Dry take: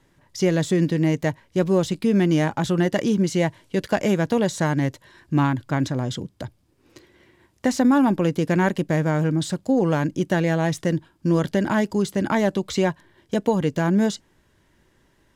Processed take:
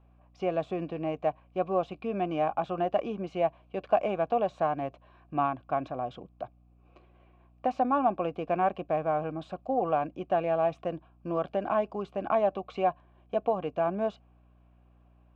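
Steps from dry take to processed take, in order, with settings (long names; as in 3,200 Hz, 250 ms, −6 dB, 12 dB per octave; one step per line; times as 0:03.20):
formant filter a
mains hum 60 Hz, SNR 32 dB
bass and treble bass +3 dB, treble −15 dB
level +6.5 dB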